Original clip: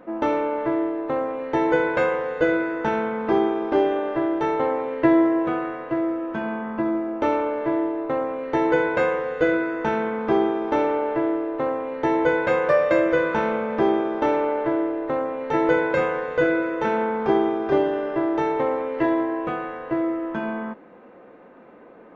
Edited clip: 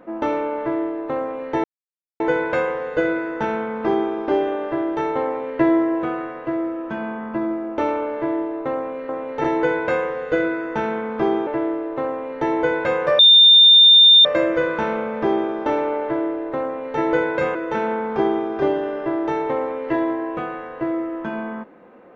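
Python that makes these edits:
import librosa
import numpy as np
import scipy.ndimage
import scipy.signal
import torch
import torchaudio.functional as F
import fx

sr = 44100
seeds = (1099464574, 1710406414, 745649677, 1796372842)

y = fx.edit(x, sr, fx.insert_silence(at_s=1.64, length_s=0.56),
    fx.cut(start_s=10.56, length_s=0.53),
    fx.insert_tone(at_s=12.81, length_s=1.06, hz=3610.0, db=-6.5),
    fx.duplicate(start_s=15.21, length_s=0.35, to_s=8.53),
    fx.cut(start_s=16.11, length_s=0.54), tone=tone)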